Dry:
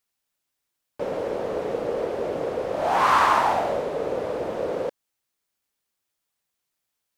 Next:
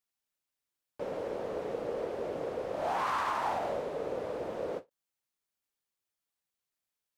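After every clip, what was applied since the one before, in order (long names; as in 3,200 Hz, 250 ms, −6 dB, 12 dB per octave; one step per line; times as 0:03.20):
brickwall limiter −15 dBFS, peak gain reduction 7 dB
every ending faded ahead of time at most 390 dB per second
level −8.5 dB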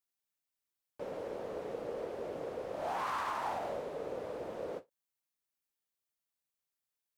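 high-shelf EQ 10,000 Hz +5 dB
level −4.5 dB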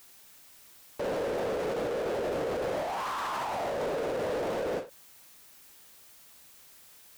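compressor whose output falls as the input rises −41 dBFS, ratio −1
power curve on the samples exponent 0.5
level +4.5 dB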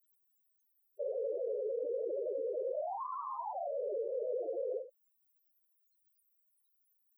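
spectral peaks only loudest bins 4
level −1.5 dB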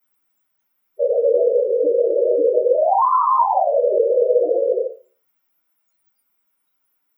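convolution reverb RT60 0.35 s, pre-delay 3 ms, DRR −9 dB
level +8.5 dB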